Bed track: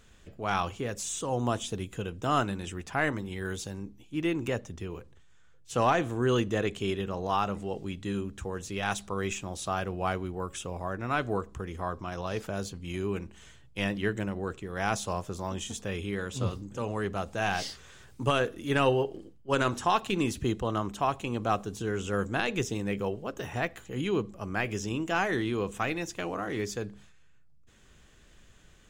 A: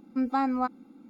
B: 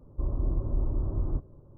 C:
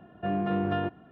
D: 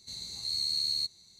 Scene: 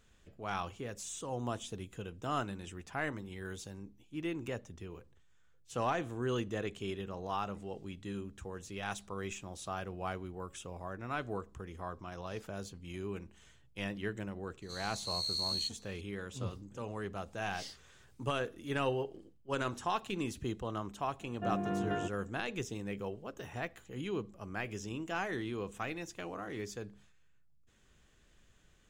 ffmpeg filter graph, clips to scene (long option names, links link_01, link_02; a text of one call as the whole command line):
ffmpeg -i bed.wav -i cue0.wav -i cue1.wav -i cue2.wav -i cue3.wav -filter_complex "[0:a]volume=-8.5dB[link_01];[4:a]atrim=end=1.39,asetpts=PTS-STARTPTS,volume=-5dB,afade=type=in:duration=0.004:curve=hsin,afade=type=out:start_time=1.386:duration=0.004:curve=hsin,adelay=14620[link_02];[3:a]atrim=end=1.11,asetpts=PTS-STARTPTS,volume=-7dB,afade=type=in:duration=0.004:curve=hsin,afade=type=out:start_time=1.106:duration=0.004:curve=hsin,adelay=21190[link_03];[link_01][link_02][link_03]amix=inputs=3:normalize=0" out.wav